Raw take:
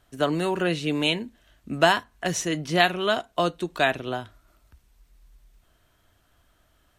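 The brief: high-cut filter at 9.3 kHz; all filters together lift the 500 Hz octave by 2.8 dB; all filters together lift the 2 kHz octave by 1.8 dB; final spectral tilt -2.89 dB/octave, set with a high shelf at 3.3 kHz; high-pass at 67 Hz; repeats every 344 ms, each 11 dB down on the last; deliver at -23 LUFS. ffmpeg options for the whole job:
-af "highpass=67,lowpass=9300,equalizer=f=500:t=o:g=4,equalizer=f=2000:t=o:g=3.5,highshelf=f=3300:g=-4.5,aecho=1:1:344|688|1032:0.282|0.0789|0.0221"

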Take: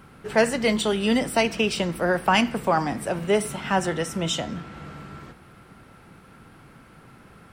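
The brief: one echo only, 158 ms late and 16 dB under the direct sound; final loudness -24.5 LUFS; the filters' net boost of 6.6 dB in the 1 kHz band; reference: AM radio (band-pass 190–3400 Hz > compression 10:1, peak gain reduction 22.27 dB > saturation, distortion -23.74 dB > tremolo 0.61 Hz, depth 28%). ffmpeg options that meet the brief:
-af "highpass=190,lowpass=3400,equalizer=f=1000:t=o:g=8.5,aecho=1:1:158:0.158,acompressor=threshold=0.0251:ratio=10,asoftclip=threshold=0.075,tremolo=f=0.61:d=0.28,volume=5.31"

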